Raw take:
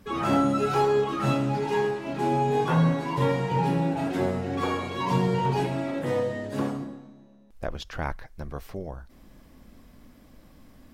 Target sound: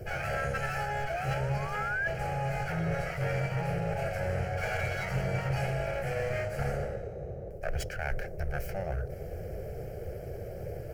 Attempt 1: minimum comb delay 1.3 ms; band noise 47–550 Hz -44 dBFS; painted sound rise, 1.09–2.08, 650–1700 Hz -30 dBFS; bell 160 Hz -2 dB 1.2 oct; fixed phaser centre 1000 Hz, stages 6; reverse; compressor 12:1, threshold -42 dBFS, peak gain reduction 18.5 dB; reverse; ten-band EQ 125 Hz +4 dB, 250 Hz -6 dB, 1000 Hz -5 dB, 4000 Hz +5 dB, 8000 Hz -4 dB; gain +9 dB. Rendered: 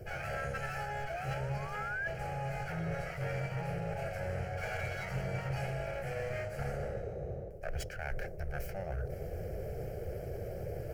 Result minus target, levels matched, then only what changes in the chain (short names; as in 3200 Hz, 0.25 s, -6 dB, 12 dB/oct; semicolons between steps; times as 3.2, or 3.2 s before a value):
compressor: peak gain reduction +5.5 dB
change: compressor 12:1, threshold -36 dBFS, peak gain reduction 13 dB